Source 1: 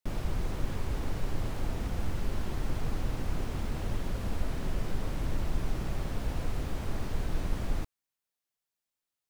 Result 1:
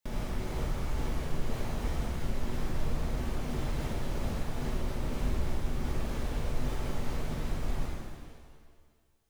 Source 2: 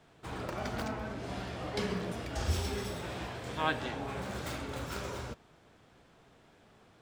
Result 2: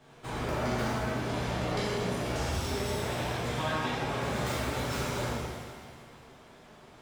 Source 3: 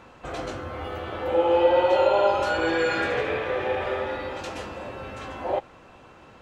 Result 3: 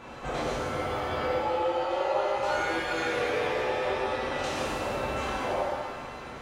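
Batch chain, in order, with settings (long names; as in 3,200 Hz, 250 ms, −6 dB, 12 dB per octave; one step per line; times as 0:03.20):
reverb reduction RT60 0.57 s
downward compressor 4 to 1, threshold −37 dBFS
reverb with rising layers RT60 1.7 s, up +7 semitones, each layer −8 dB, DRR −7.5 dB
level +1 dB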